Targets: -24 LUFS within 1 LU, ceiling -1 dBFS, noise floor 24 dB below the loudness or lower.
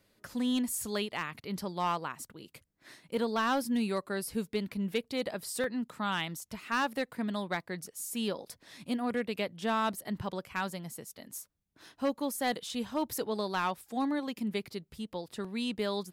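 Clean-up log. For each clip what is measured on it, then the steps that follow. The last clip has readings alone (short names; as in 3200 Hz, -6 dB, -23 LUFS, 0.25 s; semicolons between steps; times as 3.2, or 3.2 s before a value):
clipped 0.5%; flat tops at -23.0 dBFS; dropouts 1; longest dropout 1.1 ms; loudness -34.0 LUFS; peak -23.0 dBFS; loudness target -24.0 LUFS
-> clip repair -23 dBFS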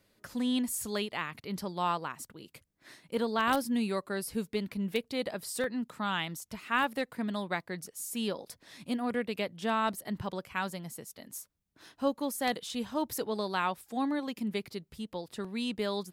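clipped 0.0%; dropouts 1; longest dropout 1.1 ms
-> interpolate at 5.64, 1.1 ms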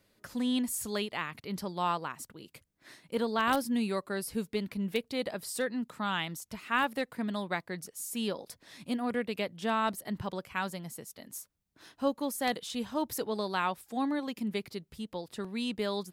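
dropouts 0; loudness -34.0 LUFS; peak -14.0 dBFS; loudness target -24.0 LUFS
-> gain +10 dB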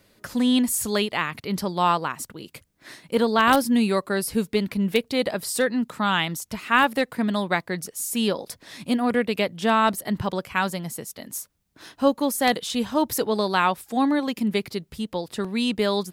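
loudness -24.0 LUFS; peak -4.0 dBFS; noise floor -65 dBFS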